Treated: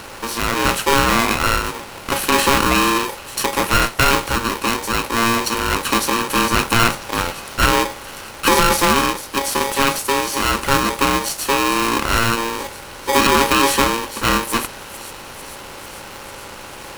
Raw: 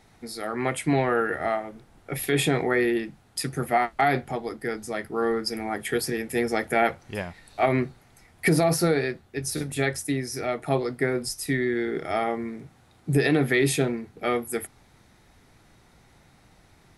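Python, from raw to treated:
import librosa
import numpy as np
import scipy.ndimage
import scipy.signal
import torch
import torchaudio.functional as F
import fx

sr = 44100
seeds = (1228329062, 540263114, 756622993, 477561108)

y = fx.bin_compress(x, sr, power=0.6)
y = fx.echo_wet_highpass(y, sr, ms=446, feedback_pct=73, hz=3700.0, wet_db=-10.5)
y = y * np.sign(np.sin(2.0 * np.pi * 690.0 * np.arange(len(y)) / sr))
y = y * 10.0 ** (4.0 / 20.0)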